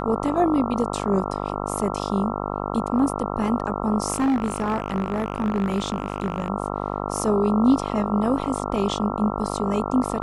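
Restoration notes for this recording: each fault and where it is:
mains buzz 50 Hz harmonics 27 −28 dBFS
0:04.12–0:06.50: clipping −17.5 dBFS

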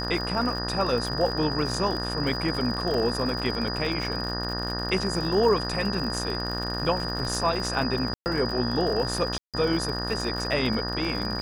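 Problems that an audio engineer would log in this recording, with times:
mains buzz 60 Hz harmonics 31 −32 dBFS
surface crackle 63 per second −30 dBFS
whistle 4,900 Hz −32 dBFS
0:02.94: drop-out 2.7 ms
0:08.14–0:08.26: drop-out 119 ms
0:09.38–0:09.54: drop-out 157 ms

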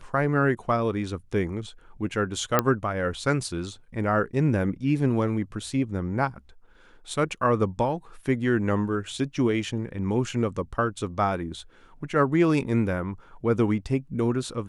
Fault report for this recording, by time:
0:02.59: click −5 dBFS

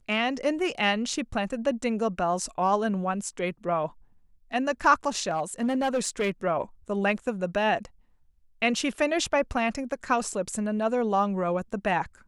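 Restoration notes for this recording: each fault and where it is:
0:05.31–0:06.30: clipping −21.5 dBFS

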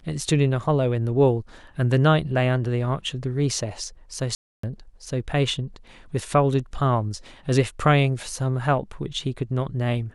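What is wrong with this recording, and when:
0:04.35–0:04.63: drop-out 284 ms

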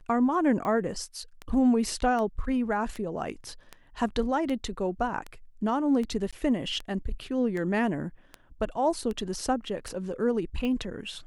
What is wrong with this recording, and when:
scratch tick 78 rpm −22 dBFS
0:06.31–0:06.33: drop-out 16 ms

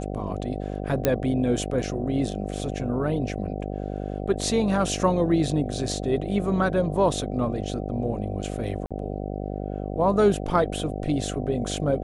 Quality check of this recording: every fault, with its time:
mains buzz 50 Hz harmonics 15 −31 dBFS
0:01.05: click −6 dBFS
0:08.86–0:08.91: drop-out 46 ms

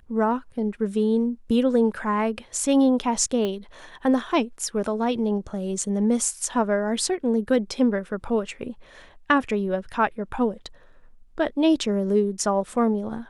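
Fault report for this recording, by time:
0:03.45: click −16 dBFS

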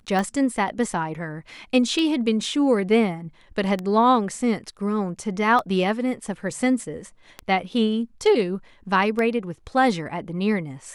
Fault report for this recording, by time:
scratch tick 33 1/3 rpm −14 dBFS

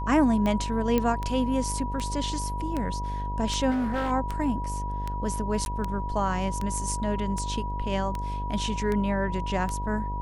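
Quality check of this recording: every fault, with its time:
mains buzz 50 Hz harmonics 19 −32 dBFS
scratch tick 78 rpm −17 dBFS
whistle 970 Hz −33 dBFS
0:00.98: click −12 dBFS
0:03.70–0:04.12: clipping −23.5 dBFS
0:05.65–0:05.66: drop-out 11 ms

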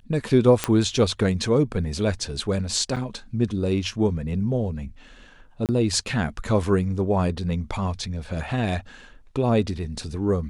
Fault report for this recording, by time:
0:00.64: click −5 dBFS
0:02.96–0:02.97: drop-out 5.4 ms
0:05.66–0:05.69: drop-out 28 ms

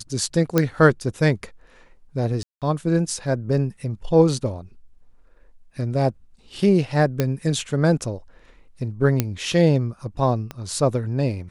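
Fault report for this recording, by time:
0:00.58: click −4 dBFS
0:02.43–0:02.62: drop-out 187 ms
0:07.20: click −7 dBFS
0:09.20: click −5 dBFS
0:10.51: click −17 dBFS

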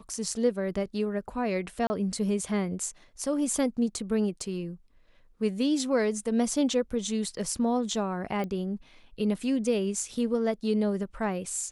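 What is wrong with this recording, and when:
0:01.87–0:01.90: drop-out 30 ms
0:08.44: click −23 dBFS

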